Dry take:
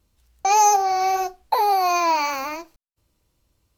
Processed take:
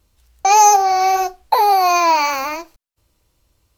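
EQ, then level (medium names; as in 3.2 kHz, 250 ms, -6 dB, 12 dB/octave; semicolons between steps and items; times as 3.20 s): peaking EQ 200 Hz -4.5 dB 1.5 oct; +6.0 dB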